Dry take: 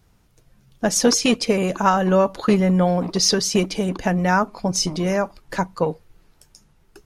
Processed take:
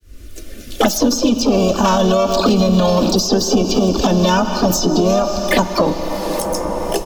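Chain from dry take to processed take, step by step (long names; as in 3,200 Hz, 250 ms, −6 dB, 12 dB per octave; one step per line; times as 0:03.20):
fade in at the beginning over 2.33 s
low-shelf EQ 140 Hz +7.5 dB
comb filter 3.4 ms, depth 72%
pitch-shifted copies added +3 semitones −6 dB, +12 semitones −11 dB
phaser swept by the level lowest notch 150 Hz, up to 2,000 Hz, full sweep at −20.5 dBFS
on a send at −12 dB: convolution reverb RT60 3.1 s, pre-delay 5 ms
on the sum: boost into a limiter +12 dB
multiband upward and downward compressor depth 100%
level −5 dB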